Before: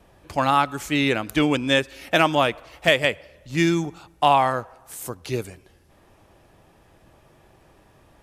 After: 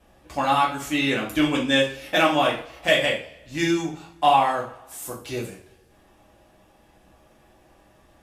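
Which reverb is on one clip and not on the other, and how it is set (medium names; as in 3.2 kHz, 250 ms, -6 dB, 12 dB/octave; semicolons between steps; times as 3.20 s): two-slope reverb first 0.39 s, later 1.6 s, from -25 dB, DRR -4.5 dB; trim -6.5 dB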